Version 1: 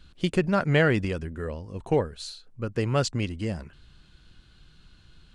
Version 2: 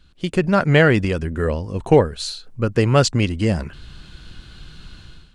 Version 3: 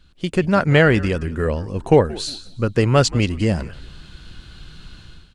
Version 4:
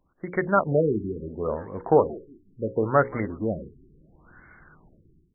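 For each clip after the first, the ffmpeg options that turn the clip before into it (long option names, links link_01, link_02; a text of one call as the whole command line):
ffmpeg -i in.wav -af "dynaudnorm=framelen=150:gausssize=5:maxgain=15.5dB,volume=-1dB" out.wav
ffmpeg -i in.wav -filter_complex "[0:a]asplit=4[link_01][link_02][link_03][link_04];[link_02]adelay=178,afreqshift=-89,volume=-19dB[link_05];[link_03]adelay=356,afreqshift=-178,volume=-29.2dB[link_06];[link_04]adelay=534,afreqshift=-267,volume=-39.3dB[link_07];[link_01][link_05][link_06][link_07]amix=inputs=4:normalize=0" out.wav
ffmpeg -i in.wav -af "aemphasis=mode=production:type=riaa,bandreject=frequency=60:width_type=h:width=6,bandreject=frequency=120:width_type=h:width=6,bandreject=frequency=180:width_type=h:width=6,bandreject=frequency=240:width_type=h:width=6,bandreject=frequency=300:width_type=h:width=6,bandreject=frequency=360:width_type=h:width=6,bandreject=frequency=420:width_type=h:width=6,bandreject=frequency=480:width_type=h:width=6,bandreject=frequency=540:width_type=h:width=6,afftfilt=real='re*lt(b*sr/1024,410*pow(2300/410,0.5+0.5*sin(2*PI*0.72*pts/sr)))':imag='im*lt(b*sr/1024,410*pow(2300/410,0.5+0.5*sin(2*PI*0.72*pts/sr)))':win_size=1024:overlap=0.75,volume=-1dB" out.wav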